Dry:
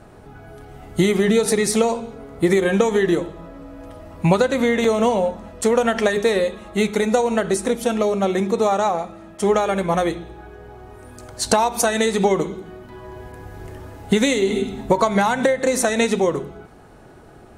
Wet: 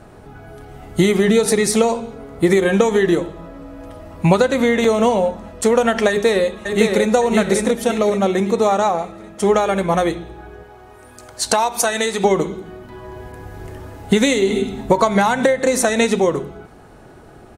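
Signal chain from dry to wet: 6.09–7.14 echo throw 0.56 s, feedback 40%, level -4 dB; 10.63–12.24 low shelf 410 Hz -9 dB; gain +2.5 dB

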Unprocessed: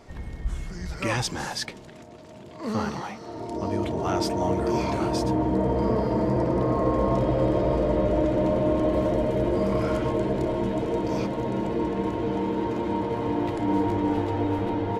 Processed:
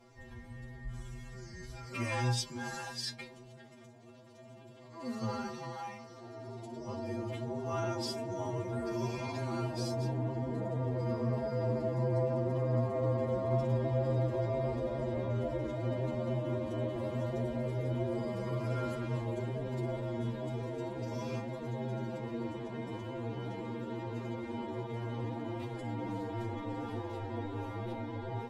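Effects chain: metallic resonator 120 Hz, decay 0.21 s, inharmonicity 0.008; time stretch by phase-locked vocoder 1.9×

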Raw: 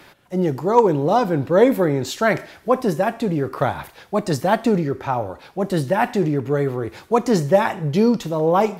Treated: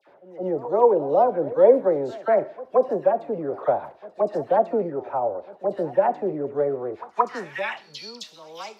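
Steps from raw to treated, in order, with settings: band-pass sweep 590 Hz -> 4500 Hz, 6.83–7.98; dispersion lows, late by 73 ms, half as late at 1600 Hz; reverse echo 0.175 s -19 dB; gain +2.5 dB

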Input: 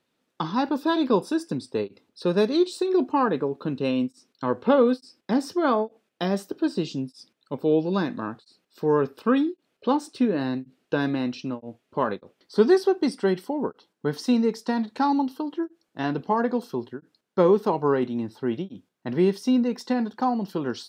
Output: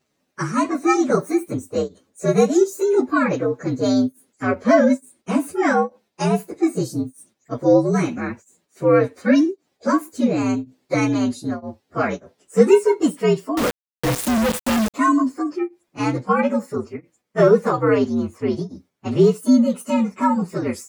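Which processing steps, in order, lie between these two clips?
inharmonic rescaling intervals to 119%; 13.57–14.94 companded quantiser 2-bit; gain +7.5 dB

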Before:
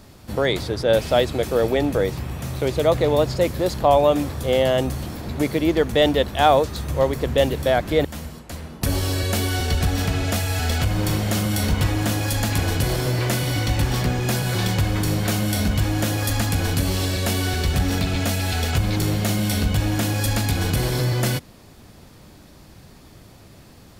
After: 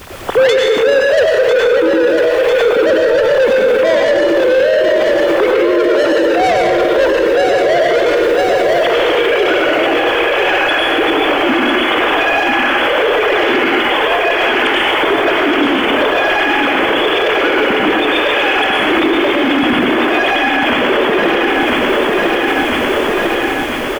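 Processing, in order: sine-wave speech; in parallel at +3 dB: compressor, threshold -25 dBFS, peak gain reduction 17.5 dB; on the sum: soft clip -17.5 dBFS, distortion -5 dB; added noise pink -54 dBFS; on a send: feedback echo 0.998 s, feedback 59%, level -6.5 dB; on the sum: plate-style reverb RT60 1.1 s, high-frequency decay 0.8×, pre-delay 85 ms, DRR -2 dB; maximiser +21.5 dB; gain -4 dB

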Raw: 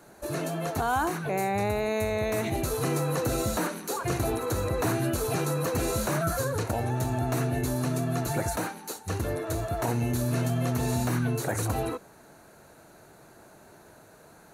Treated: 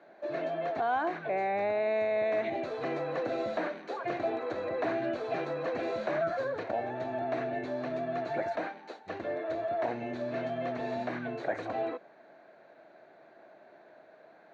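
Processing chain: speaker cabinet 390–3100 Hz, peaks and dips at 440 Hz -5 dB, 640 Hz +5 dB, 930 Hz -7 dB, 1300 Hz -8 dB, 2800 Hz -7 dB

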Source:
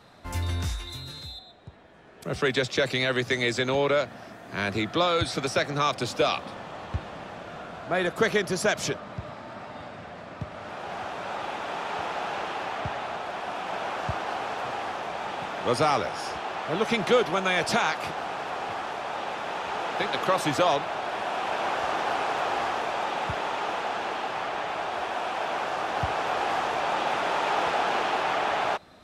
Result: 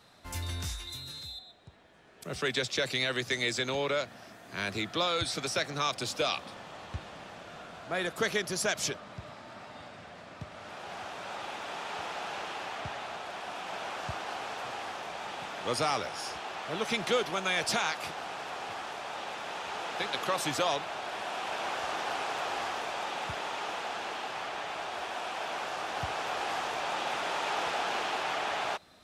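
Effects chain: high shelf 2600 Hz +9.5 dB; gain -8 dB

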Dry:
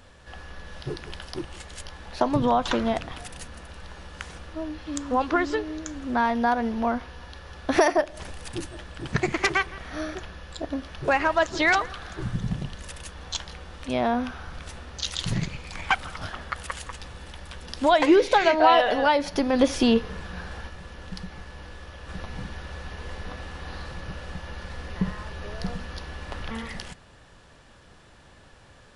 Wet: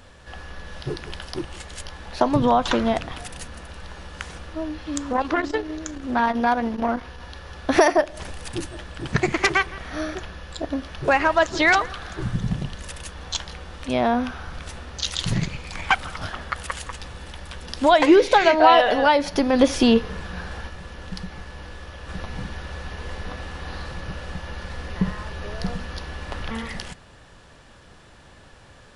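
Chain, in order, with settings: 5.12–7.2 core saturation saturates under 630 Hz; gain +3.5 dB

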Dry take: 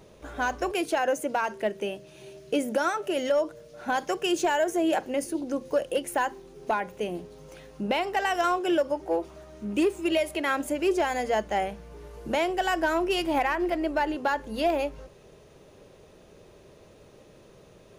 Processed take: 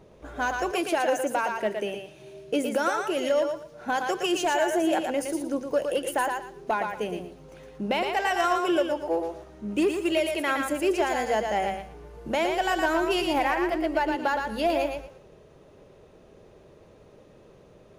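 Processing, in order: thinning echo 0.115 s, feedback 26%, high-pass 420 Hz, level -4 dB; mismatched tape noise reduction decoder only

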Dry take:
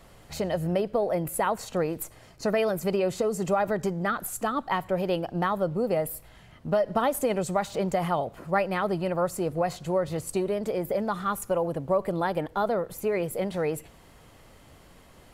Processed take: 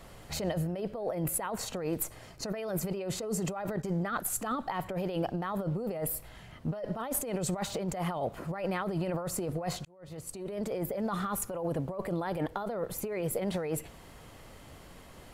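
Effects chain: 3.76–4.3 gate -34 dBFS, range -12 dB; negative-ratio compressor -31 dBFS, ratio -1; 9.85–10.91 fade in; gain -2 dB

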